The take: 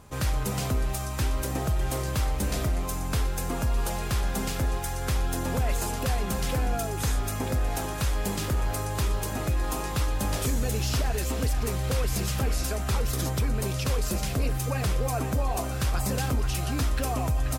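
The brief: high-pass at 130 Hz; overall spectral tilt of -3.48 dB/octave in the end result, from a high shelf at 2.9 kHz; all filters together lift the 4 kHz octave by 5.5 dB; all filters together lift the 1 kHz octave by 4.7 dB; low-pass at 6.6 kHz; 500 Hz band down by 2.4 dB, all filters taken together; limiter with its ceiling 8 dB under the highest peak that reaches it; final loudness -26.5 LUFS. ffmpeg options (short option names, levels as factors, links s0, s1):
-af "highpass=130,lowpass=6600,equalizer=f=500:t=o:g=-5.5,equalizer=f=1000:t=o:g=7.5,highshelf=f=2900:g=3.5,equalizer=f=4000:t=o:g=4.5,volume=1.88,alimiter=limit=0.141:level=0:latency=1"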